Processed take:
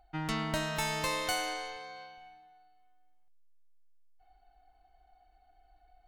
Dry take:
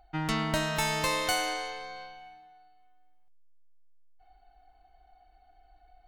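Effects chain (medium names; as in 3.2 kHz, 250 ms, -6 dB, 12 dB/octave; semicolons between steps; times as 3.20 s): 1.76–2.18 s: high-pass 67 Hz; trim -4 dB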